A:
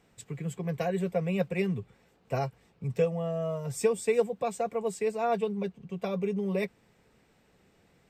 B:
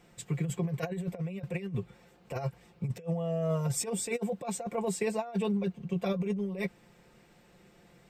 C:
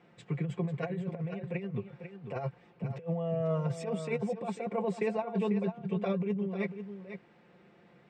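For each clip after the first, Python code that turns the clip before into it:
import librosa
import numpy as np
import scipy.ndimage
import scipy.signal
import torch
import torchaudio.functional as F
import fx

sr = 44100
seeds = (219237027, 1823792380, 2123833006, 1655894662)

y1 = x + 0.5 * np.pad(x, (int(5.7 * sr / 1000.0), 0))[:len(x)]
y1 = fx.over_compress(y1, sr, threshold_db=-31.0, ratio=-0.5)
y2 = fx.bandpass_edges(y1, sr, low_hz=130.0, high_hz=2700.0)
y2 = y2 + 10.0 ** (-9.5 / 20.0) * np.pad(y2, (int(495 * sr / 1000.0), 0))[:len(y2)]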